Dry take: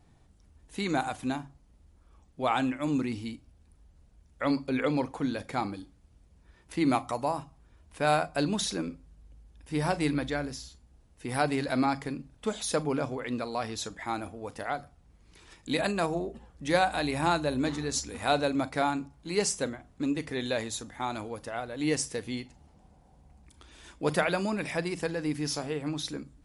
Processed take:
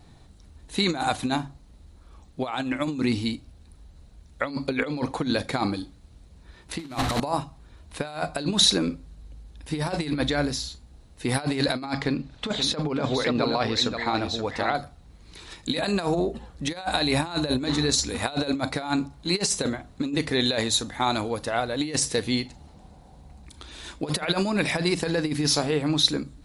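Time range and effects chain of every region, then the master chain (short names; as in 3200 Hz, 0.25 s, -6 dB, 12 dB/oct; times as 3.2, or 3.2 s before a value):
6.79–7.2 delta modulation 64 kbps, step -26 dBFS + tone controls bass +5 dB, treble -4 dB + upward compressor, threshold -26 dBFS
11.94–14.75 LPF 4900 Hz + echo 0.527 s -8.5 dB + mismatched tape noise reduction encoder only
whole clip: negative-ratio compressor -31 dBFS, ratio -0.5; bell 4000 Hz +9.5 dB 0.27 oct; gain +6.5 dB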